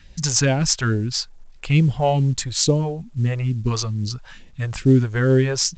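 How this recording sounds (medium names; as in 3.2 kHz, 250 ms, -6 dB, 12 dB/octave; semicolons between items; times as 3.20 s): phasing stages 2, 2.3 Hz, lowest notch 220–1300 Hz; a quantiser's noise floor 12-bit, dither none; A-law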